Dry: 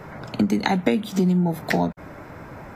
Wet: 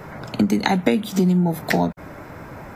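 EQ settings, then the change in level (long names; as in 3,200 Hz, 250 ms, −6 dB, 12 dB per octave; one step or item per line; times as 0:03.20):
high-shelf EQ 7,900 Hz +5.5 dB
+2.0 dB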